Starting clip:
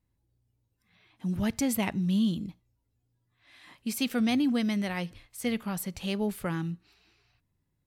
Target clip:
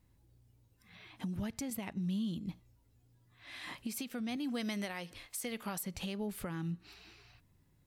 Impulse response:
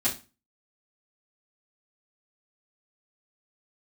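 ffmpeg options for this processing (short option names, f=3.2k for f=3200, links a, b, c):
-filter_complex "[0:a]asettb=1/sr,asplit=3[a][b][c];[a]atrim=end=1.704[d];[b]atrim=start=1.7:end=2.47,asetpts=PTS-STARTPTS,afade=t=in:d=0.004:c=qsin,afade=t=out:st=0.766:d=0.004:c=qsin,agate=range=-7dB:threshold=-32dB:ratio=16:detection=peak[e];[c]atrim=start=2.466[f];[d][e]acrossfade=d=0.004:c1=hsin:c2=qsin[g];[g][f]acrossfade=d=0.004:c1=qsin:c2=hsin,asettb=1/sr,asplit=3[h][i][j];[h]atrim=end=4.364[k];[i]atrim=start=4.36:end=5.83,asetpts=PTS-STARTPTS,afade=t=in:d=0.004:c=qsin,afade=t=out:st=1.466:d=0.004:c=qsin,bass=f=250:g=-10,treble=f=4k:g=3[l];[j]atrim=start=5.826[m];[k][l]acrossfade=d=0.004:c1=hsin:c2=qsin[n];[n][m]acrossfade=d=0.004:c1=qsin:c2=hsin,acompressor=threshold=-39dB:ratio=12,alimiter=level_in=13dB:limit=-24dB:level=0:latency=1:release=440,volume=-13dB,volume=8dB"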